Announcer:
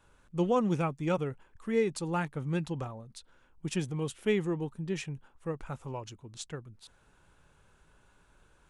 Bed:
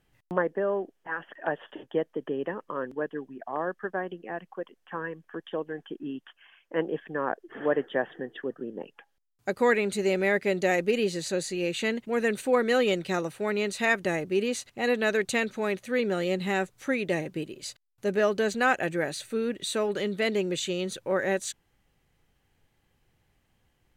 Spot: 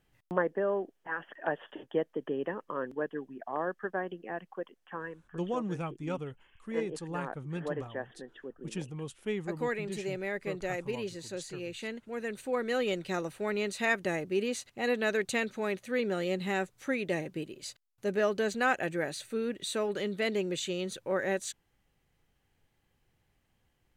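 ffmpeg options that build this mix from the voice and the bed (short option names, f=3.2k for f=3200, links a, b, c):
-filter_complex "[0:a]adelay=5000,volume=-6dB[a];[1:a]volume=4dB,afade=t=out:st=4.66:d=0.75:silence=0.398107,afade=t=in:st=12.27:d=1.06:silence=0.473151[b];[a][b]amix=inputs=2:normalize=0"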